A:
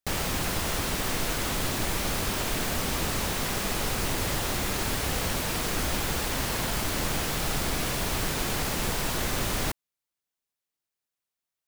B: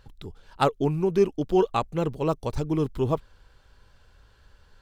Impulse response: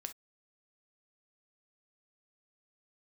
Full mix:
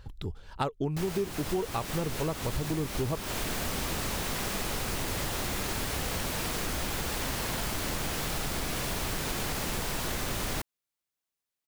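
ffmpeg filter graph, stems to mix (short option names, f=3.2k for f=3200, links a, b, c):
-filter_complex "[0:a]adelay=900,volume=-1dB[a];[1:a]equalizer=f=66:w=0.67:g=6.5,volume=2dB[b];[a][b]amix=inputs=2:normalize=0,acompressor=threshold=-28dB:ratio=6"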